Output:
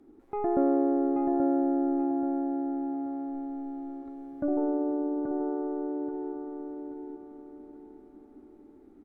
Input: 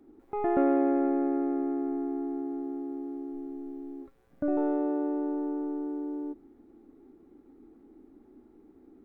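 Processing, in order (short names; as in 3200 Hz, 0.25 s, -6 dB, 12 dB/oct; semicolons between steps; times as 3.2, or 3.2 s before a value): treble ducked by the level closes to 970 Hz, closed at -26 dBFS; on a send: feedback echo 0.831 s, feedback 35%, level -5 dB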